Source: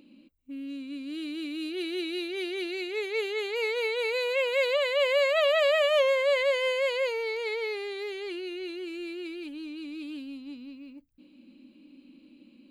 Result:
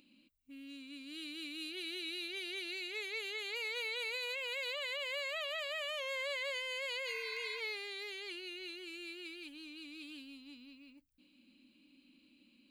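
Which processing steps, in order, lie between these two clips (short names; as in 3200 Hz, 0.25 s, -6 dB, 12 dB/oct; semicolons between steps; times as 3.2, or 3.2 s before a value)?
passive tone stack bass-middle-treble 5-5-5; limiter -37.5 dBFS, peak gain reduction 9 dB; spectral repair 7.1–7.57, 630–2600 Hz before; gain +5.5 dB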